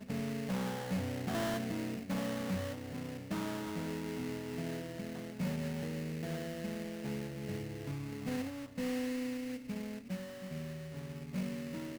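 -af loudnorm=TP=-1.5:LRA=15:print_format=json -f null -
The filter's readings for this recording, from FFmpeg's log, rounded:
"input_i" : "-39.6",
"input_tp" : "-29.3",
"input_lra" : "3.3",
"input_thresh" : "-49.6",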